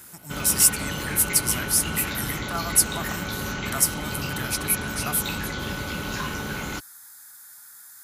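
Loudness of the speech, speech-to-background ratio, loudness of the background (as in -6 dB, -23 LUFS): -23.0 LUFS, 7.0 dB, -30.0 LUFS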